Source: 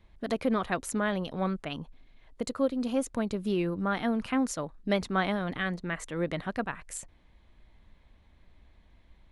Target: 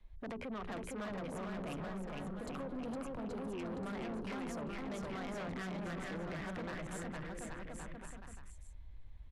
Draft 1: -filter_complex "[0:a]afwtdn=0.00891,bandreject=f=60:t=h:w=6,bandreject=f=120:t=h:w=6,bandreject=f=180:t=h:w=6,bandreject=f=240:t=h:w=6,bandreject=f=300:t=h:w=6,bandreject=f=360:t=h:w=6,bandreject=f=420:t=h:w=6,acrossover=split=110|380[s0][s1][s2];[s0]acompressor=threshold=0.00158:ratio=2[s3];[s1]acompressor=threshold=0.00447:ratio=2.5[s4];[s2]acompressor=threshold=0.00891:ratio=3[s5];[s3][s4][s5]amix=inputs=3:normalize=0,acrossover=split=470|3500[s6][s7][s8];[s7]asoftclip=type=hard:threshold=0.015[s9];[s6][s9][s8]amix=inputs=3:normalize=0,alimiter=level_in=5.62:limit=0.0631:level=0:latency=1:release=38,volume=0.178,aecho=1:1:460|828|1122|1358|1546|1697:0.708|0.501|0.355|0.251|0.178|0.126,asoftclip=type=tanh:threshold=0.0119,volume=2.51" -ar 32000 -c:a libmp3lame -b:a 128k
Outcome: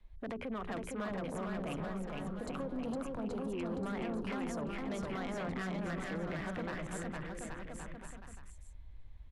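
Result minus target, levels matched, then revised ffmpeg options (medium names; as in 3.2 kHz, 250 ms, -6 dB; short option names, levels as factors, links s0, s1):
saturation: distortion -8 dB
-filter_complex "[0:a]afwtdn=0.00891,bandreject=f=60:t=h:w=6,bandreject=f=120:t=h:w=6,bandreject=f=180:t=h:w=6,bandreject=f=240:t=h:w=6,bandreject=f=300:t=h:w=6,bandreject=f=360:t=h:w=6,bandreject=f=420:t=h:w=6,acrossover=split=110|380[s0][s1][s2];[s0]acompressor=threshold=0.00158:ratio=2[s3];[s1]acompressor=threshold=0.00447:ratio=2.5[s4];[s2]acompressor=threshold=0.00891:ratio=3[s5];[s3][s4][s5]amix=inputs=3:normalize=0,acrossover=split=470|3500[s6][s7][s8];[s7]asoftclip=type=hard:threshold=0.015[s9];[s6][s9][s8]amix=inputs=3:normalize=0,alimiter=level_in=5.62:limit=0.0631:level=0:latency=1:release=38,volume=0.178,aecho=1:1:460|828|1122|1358|1546|1697:0.708|0.501|0.355|0.251|0.178|0.126,asoftclip=type=tanh:threshold=0.00531,volume=2.51" -ar 32000 -c:a libmp3lame -b:a 128k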